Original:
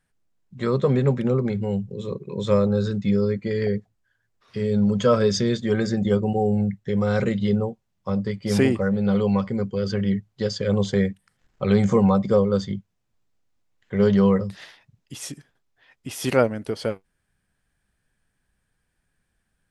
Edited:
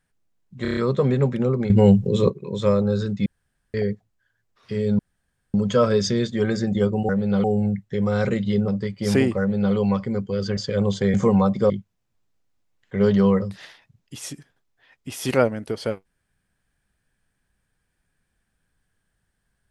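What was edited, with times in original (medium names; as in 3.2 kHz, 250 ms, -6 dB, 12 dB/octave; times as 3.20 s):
0.62 s: stutter 0.03 s, 6 plays
1.55–2.15 s: gain +11.5 dB
3.11–3.59 s: room tone
4.84 s: insert room tone 0.55 s
7.63–8.12 s: delete
8.84–9.19 s: copy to 6.39 s
10.01–10.49 s: delete
11.06–11.83 s: delete
12.39–12.69 s: delete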